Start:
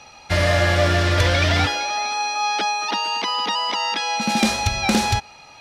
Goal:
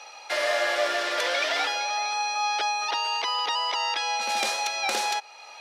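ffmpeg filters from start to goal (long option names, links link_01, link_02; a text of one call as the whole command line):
ffmpeg -i in.wav -filter_complex "[0:a]asplit=2[link_01][link_02];[link_02]acompressor=threshold=-32dB:ratio=6,volume=2dB[link_03];[link_01][link_03]amix=inputs=2:normalize=0,highpass=frequency=450:width=0.5412,highpass=frequency=450:width=1.3066,volume=-6.5dB" out.wav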